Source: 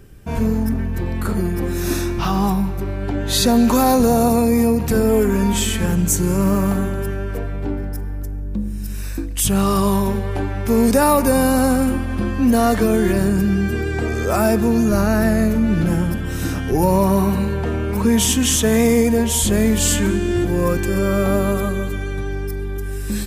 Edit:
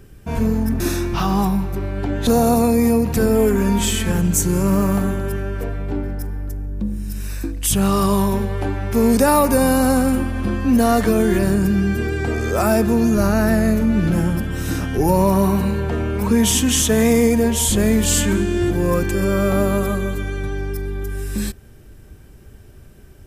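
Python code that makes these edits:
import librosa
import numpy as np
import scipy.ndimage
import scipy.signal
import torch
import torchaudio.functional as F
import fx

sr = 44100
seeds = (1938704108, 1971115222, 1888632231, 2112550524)

y = fx.edit(x, sr, fx.cut(start_s=0.8, length_s=1.05),
    fx.cut(start_s=3.32, length_s=0.69), tone=tone)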